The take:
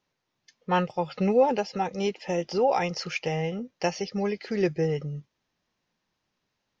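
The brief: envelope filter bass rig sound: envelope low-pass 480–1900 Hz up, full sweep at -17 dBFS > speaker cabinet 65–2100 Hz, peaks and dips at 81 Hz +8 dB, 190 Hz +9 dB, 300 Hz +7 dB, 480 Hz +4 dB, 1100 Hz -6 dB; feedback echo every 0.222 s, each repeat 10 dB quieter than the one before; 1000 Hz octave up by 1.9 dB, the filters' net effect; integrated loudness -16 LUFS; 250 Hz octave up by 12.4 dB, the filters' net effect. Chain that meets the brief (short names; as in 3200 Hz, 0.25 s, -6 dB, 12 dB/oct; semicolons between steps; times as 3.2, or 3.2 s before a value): bell 250 Hz +8 dB; bell 1000 Hz +3 dB; feedback echo 0.222 s, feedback 32%, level -10 dB; envelope low-pass 480–1900 Hz up, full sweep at -17 dBFS; speaker cabinet 65–2100 Hz, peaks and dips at 81 Hz +8 dB, 190 Hz +9 dB, 300 Hz +7 dB, 480 Hz +4 dB, 1100 Hz -6 dB; gain +2.5 dB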